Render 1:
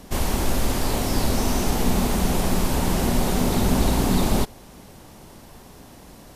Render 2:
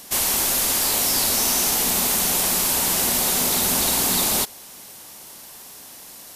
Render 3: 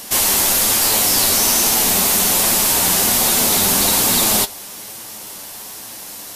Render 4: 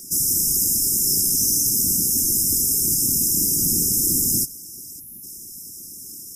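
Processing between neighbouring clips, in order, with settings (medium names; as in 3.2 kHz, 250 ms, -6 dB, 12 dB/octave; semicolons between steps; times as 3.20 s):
tilt EQ +4 dB/octave
in parallel at 0 dB: peak limiter -19 dBFS, peak gain reduction 10.5 dB; on the sum: flange 1.2 Hz, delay 8.7 ms, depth 1.7 ms, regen +44%; trim +6.5 dB
brick-wall FIR band-stop 330–5000 Hz; time-frequency box 5.00–5.23 s, 250–9600 Hz -15 dB; whisper effect; trim -3.5 dB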